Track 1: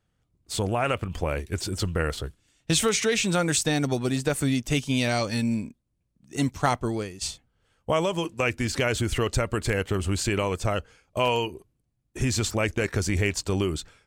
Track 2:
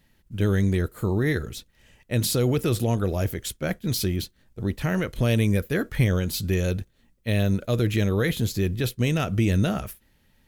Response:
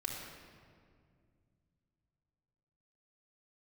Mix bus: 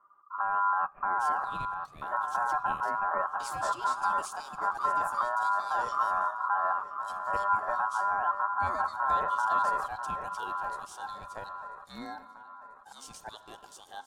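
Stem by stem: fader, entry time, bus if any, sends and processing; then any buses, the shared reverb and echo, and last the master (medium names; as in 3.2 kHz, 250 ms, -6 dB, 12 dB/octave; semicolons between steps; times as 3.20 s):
-15.0 dB, 0.70 s, send -11.5 dB, echo send -21.5 dB, LFO high-pass saw down 2.7 Hz 310–3400 Hz
-1.0 dB, 0.00 s, no send, echo send -8 dB, low-pass 1 kHz 24 dB/octave; comb 5 ms, depth 59%; peak limiter -17.5 dBFS, peak gain reduction 6 dB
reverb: on, RT60 2.1 s, pre-delay 3 ms
echo: feedback delay 990 ms, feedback 45%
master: bass shelf 370 Hz +11 dB; ring modulator 1.2 kHz; peaking EQ 1.9 kHz -14 dB 1.7 oct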